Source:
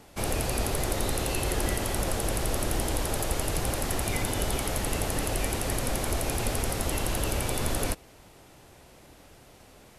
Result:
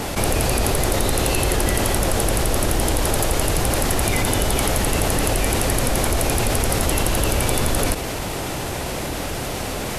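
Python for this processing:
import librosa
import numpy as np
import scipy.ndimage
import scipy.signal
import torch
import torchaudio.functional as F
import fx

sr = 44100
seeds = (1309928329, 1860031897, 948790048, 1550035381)

y = fx.env_flatten(x, sr, amount_pct=70)
y = F.gain(torch.from_numpy(y), 6.5).numpy()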